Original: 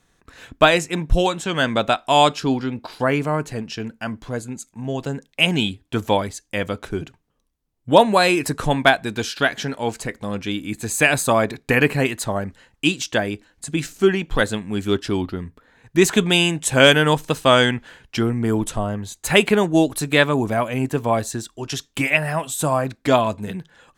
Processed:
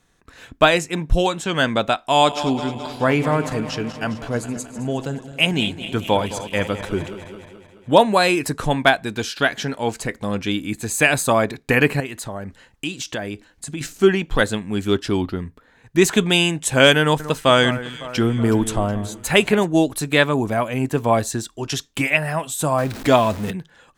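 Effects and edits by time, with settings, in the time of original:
2.11–7.91 s: backward echo that repeats 107 ms, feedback 79%, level -13 dB
12.00–13.81 s: compression 2.5:1, threshold -30 dBFS
17.01–19.65 s: echo whose repeats swap between lows and highs 185 ms, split 1.9 kHz, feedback 69%, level -13 dB
22.78–23.51 s: jump at every zero crossing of -28.5 dBFS
whole clip: level rider gain up to 3 dB

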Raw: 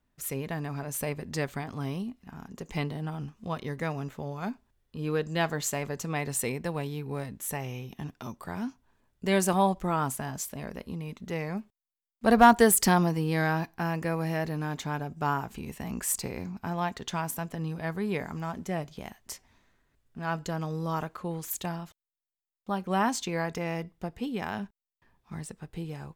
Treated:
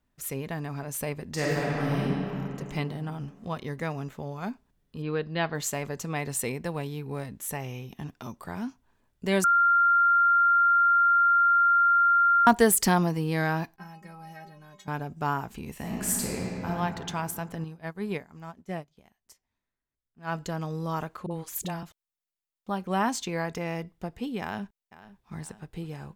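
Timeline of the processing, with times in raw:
1.31–2.02 s: reverb throw, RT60 3 s, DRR -6 dB
5.02–5.55 s: elliptic low-pass 4.6 kHz
9.44–12.47 s: bleep 1.39 kHz -17.5 dBFS
13.76–14.88 s: inharmonic resonator 190 Hz, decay 0.27 s, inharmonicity 0.008
15.72–16.71 s: reverb throw, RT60 2.7 s, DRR -2.5 dB
17.64–20.32 s: upward expansion 2.5:1, over -42 dBFS
21.26–21.83 s: phase dispersion highs, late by 48 ms, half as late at 420 Hz
24.41–25.37 s: echo throw 500 ms, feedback 65%, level -17 dB

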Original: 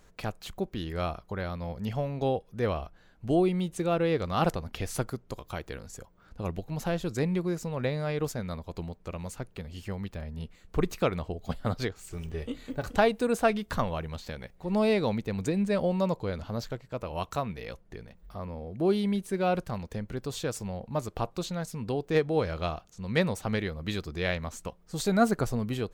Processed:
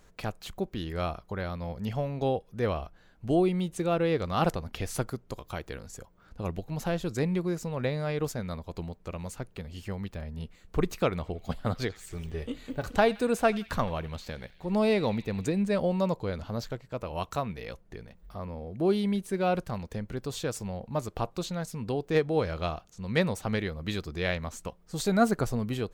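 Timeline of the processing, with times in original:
11.09–15.52 s: band-passed feedback delay 85 ms, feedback 81%, band-pass 2.9 kHz, level -17.5 dB

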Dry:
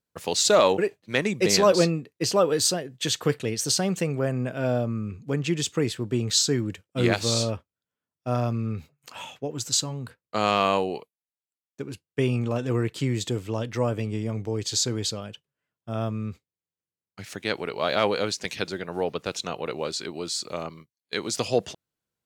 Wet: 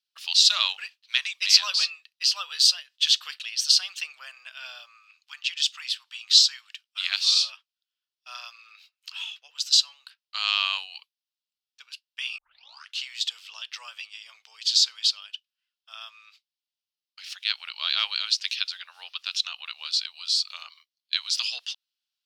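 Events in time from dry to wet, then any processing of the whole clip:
4.96–7.12 s: inverse Chebyshev high-pass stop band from 390 Hz
12.38 s: tape start 0.66 s
whole clip: inverse Chebyshev high-pass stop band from 350 Hz, stop band 60 dB; high-order bell 3.8 kHz +14 dB 1.3 oct; trim -5.5 dB

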